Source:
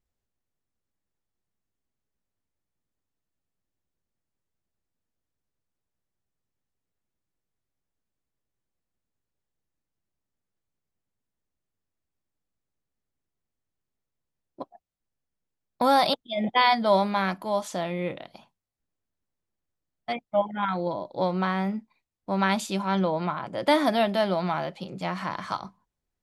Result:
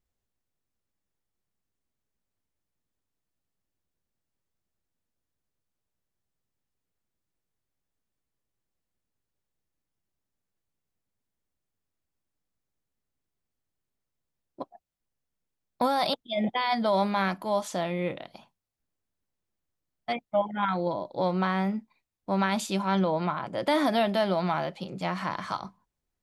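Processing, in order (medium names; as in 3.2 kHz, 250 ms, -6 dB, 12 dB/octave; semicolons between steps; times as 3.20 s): peak limiter -16 dBFS, peak gain reduction 9 dB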